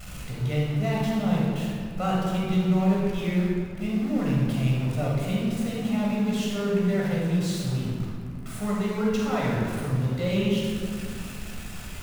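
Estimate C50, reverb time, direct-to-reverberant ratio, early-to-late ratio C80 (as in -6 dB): -2.0 dB, 2.0 s, -5.0 dB, 0.5 dB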